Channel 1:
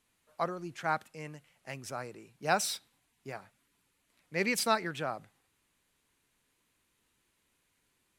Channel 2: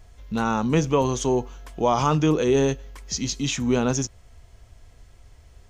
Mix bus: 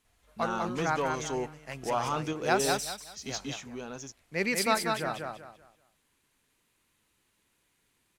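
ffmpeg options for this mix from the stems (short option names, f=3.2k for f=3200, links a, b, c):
-filter_complex "[0:a]volume=1dB,asplit=3[a][b][c];[b]volume=-4dB[d];[1:a]asplit=2[e][f];[f]highpass=f=720:p=1,volume=11dB,asoftclip=type=tanh:threshold=-10dB[g];[e][g]amix=inputs=2:normalize=0,lowpass=f=5.8k:p=1,volume=-6dB,adelay=50,volume=-11.5dB[h];[c]apad=whole_len=253471[i];[h][i]sidechaingate=range=-7dB:threshold=-57dB:ratio=16:detection=peak[j];[d]aecho=0:1:192|384|576|768:1|0.29|0.0841|0.0244[k];[a][j][k]amix=inputs=3:normalize=0"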